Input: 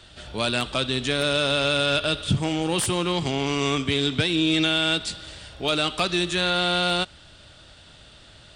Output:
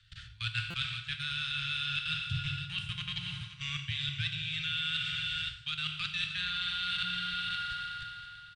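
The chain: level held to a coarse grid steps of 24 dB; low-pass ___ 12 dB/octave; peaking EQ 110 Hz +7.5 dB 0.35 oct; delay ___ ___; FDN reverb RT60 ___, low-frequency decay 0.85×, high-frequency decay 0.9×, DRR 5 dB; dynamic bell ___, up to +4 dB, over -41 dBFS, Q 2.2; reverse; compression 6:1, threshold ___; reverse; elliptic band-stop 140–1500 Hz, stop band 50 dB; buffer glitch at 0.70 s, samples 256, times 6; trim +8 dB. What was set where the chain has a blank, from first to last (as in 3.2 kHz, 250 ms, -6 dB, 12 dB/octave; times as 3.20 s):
5.1 kHz, 521 ms, -13 dB, 3 s, 2.9 kHz, -38 dBFS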